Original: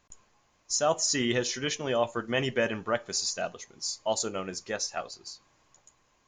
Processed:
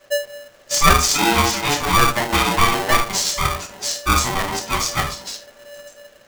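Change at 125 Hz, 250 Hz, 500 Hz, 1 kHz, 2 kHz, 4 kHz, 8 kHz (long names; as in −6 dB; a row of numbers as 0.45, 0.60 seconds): +14.5, +9.0, +4.5, +17.5, +14.0, +12.0, +10.0 decibels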